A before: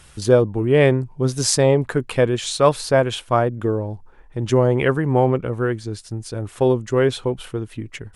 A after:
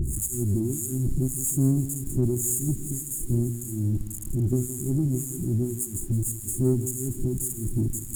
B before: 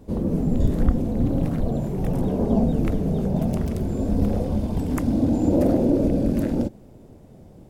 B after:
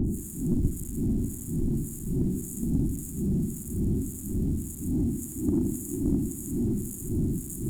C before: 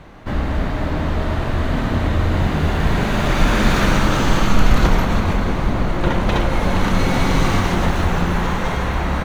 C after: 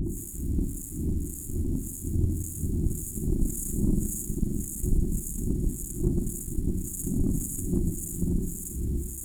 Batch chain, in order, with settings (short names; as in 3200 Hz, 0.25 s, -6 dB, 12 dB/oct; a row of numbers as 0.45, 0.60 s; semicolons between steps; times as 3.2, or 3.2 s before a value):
delta modulation 64 kbps, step -12 dBFS; added harmonics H 3 -39 dB, 4 -19 dB, 7 -37 dB, 8 -20 dB, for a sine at -0.5 dBFS; harmonic tremolo 1.8 Hz, depth 100%, crossover 2300 Hz; brick-wall FIR band-stop 390–6600 Hz; in parallel at -6.5 dB: soft clip -19.5 dBFS; on the sum: lo-fi delay 0.166 s, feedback 55%, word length 7-bit, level -12.5 dB; normalise peaks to -12 dBFS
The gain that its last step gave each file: -5.0, -7.0, -9.0 dB